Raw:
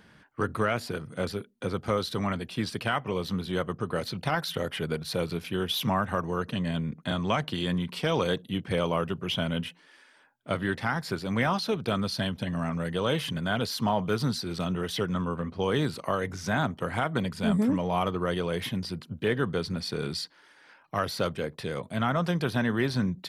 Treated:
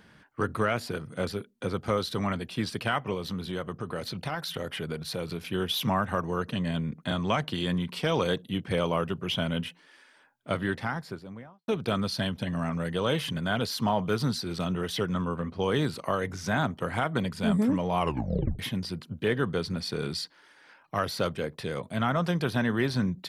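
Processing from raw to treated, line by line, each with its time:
0:03.14–0:05.41: downward compressor 2 to 1, threshold −31 dBFS
0:10.56–0:11.68: fade out and dull
0:17.99: tape stop 0.60 s

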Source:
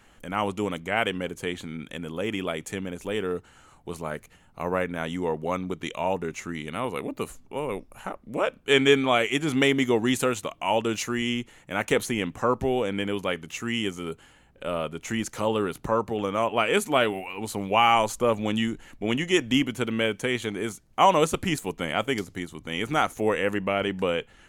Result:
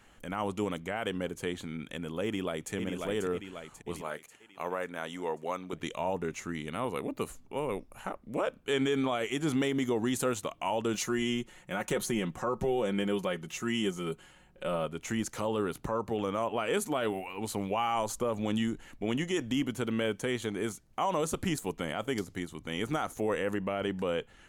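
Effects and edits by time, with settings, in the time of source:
0:02.24–0:02.73: delay throw 540 ms, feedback 55%, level −6 dB
0:04.01–0:05.73: high-pass filter 550 Hz 6 dB per octave
0:10.93–0:14.86: comb filter 5.5 ms, depth 60%
whole clip: dynamic equaliser 2,400 Hz, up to −6 dB, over −40 dBFS, Q 1.6; brickwall limiter −17.5 dBFS; level −3 dB

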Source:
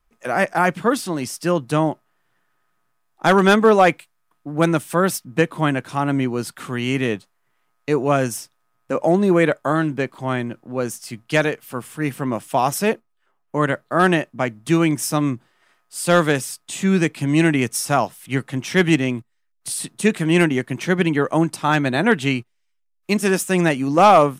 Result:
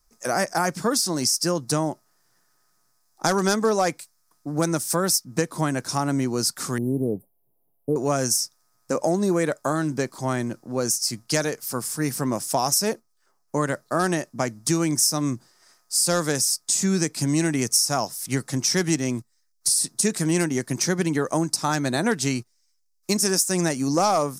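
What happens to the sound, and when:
0:06.78–0:07.96: inverse Chebyshev band-stop filter 1,500–6,800 Hz, stop band 50 dB
whole clip: high shelf with overshoot 4,000 Hz +10 dB, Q 3; downward compressor 3 to 1, threshold −20 dBFS

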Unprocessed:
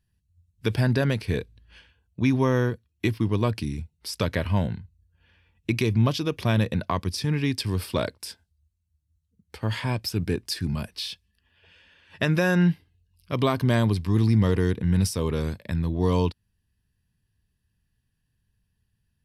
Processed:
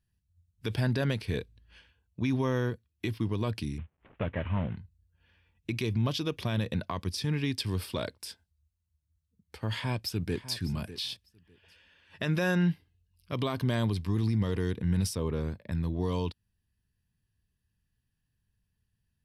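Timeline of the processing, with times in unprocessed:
0:03.78–0:04.77: variable-slope delta modulation 16 kbit/s
0:09.69–0:10.56: delay throw 600 ms, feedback 15%, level −14.5 dB
0:15.15–0:15.72: high-shelf EQ 2,800 Hz −11 dB
whole clip: dynamic equaliser 3,400 Hz, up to +4 dB, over −46 dBFS, Q 2.7; brickwall limiter −14.5 dBFS; level −5 dB

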